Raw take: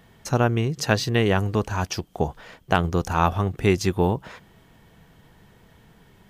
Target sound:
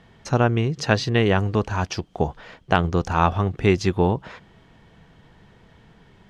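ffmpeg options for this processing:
ffmpeg -i in.wav -af "lowpass=5300,volume=1.5dB" out.wav

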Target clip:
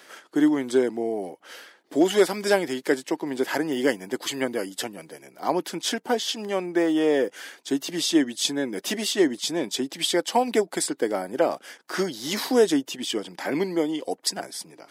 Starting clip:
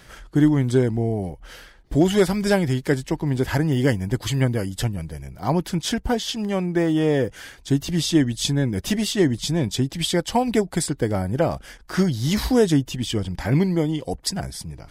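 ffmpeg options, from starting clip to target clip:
ffmpeg -i in.wav -af "highpass=frequency=280:width=0.5412,highpass=frequency=280:width=1.3066" out.wav

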